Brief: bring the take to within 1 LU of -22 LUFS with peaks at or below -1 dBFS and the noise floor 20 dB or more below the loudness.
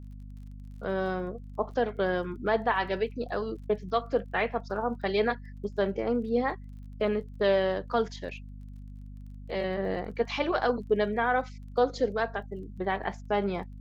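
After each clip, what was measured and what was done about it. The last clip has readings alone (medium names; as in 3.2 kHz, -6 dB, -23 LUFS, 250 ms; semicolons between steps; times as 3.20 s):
tick rate 25 per s; hum 50 Hz; highest harmonic 250 Hz; hum level -41 dBFS; loudness -30.0 LUFS; peak level -12.5 dBFS; loudness target -22.0 LUFS
-> de-click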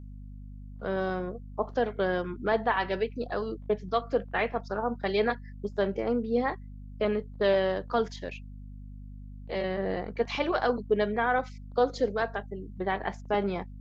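tick rate 0 per s; hum 50 Hz; highest harmonic 250 Hz; hum level -41 dBFS
-> de-hum 50 Hz, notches 5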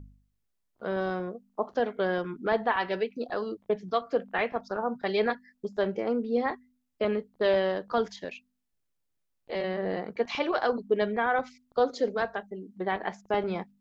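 hum not found; loudness -30.0 LUFS; peak level -12.5 dBFS; loudness target -22.0 LUFS
-> trim +8 dB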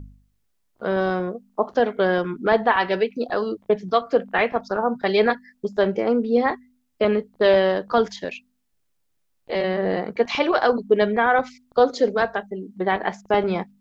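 loudness -22.0 LUFS; peak level -4.5 dBFS; noise floor -70 dBFS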